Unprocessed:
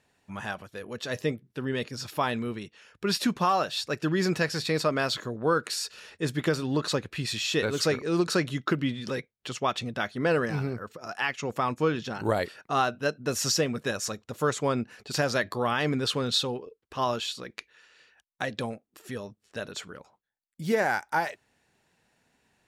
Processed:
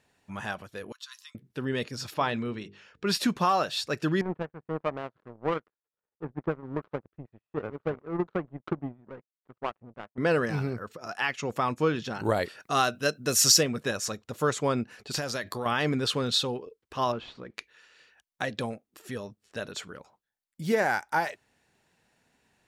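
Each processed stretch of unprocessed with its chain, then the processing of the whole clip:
0.92–1.35 s: rippled Chebyshev high-pass 1 kHz, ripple 6 dB + peaking EQ 1.8 kHz -11 dB 2 oct
2.14–3.06 s: low-pass 5.5 kHz + hum notches 50/100/150/200/250/300/350/400/450 Hz
4.21–10.18 s: low-pass 1.2 kHz 24 dB/octave + power-law waveshaper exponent 2
12.60–13.63 s: treble shelf 4.1 kHz +11.5 dB + band-stop 880 Hz, Q 7.7
15.18–15.66 s: treble shelf 4.3 kHz +7.5 dB + compression 3:1, threshold -30 dBFS
17.12–17.54 s: CVSD coder 64 kbps + tape spacing loss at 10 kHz 38 dB + loudspeaker Doppler distortion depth 0.11 ms
whole clip: none

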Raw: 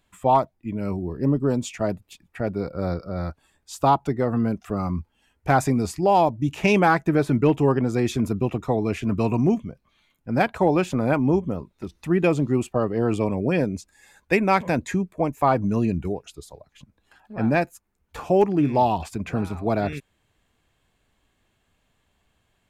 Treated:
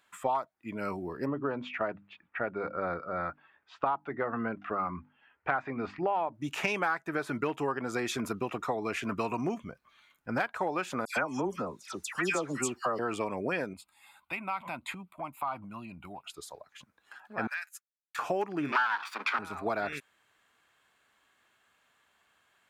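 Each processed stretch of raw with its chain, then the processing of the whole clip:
1.26–6.33 s: low-pass 2.8 kHz 24 dB/octave + hum notches 50/100/150/200/250/300 Hz
9.60–10.41 s: bass shelf 91 Hz +11.5 dB + overload inside the chain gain 13 dB
11.05–12.99 s: peaking EQ 7 kHz +14 dB 1.4 oct + phase dispersion lows, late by 118 ms, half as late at 2 kHz
13.73–16.30 s: static phaser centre 1.7 kHz, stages 6 + compression 3:1, threshold -33 dBFS
17.47–18.19 s: high-pass 1.5 kHz 24 dB/octave + expander -50 dBFS + compression, threshold -36 dBFS
18.72–19.39 s: comb filter that takes the minimum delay 0.87 ms + steep high-pass 220 Hz 48 dB/octave + high-order bell 2.1 kHz +12.5 dB 2.8 oct
whole clip: high-pass 690 Hz 6 dB/octave; peaking EQ 1.4 kHz +8.5 dB 1 oct; compression 5:1, threshold -28 dBFS

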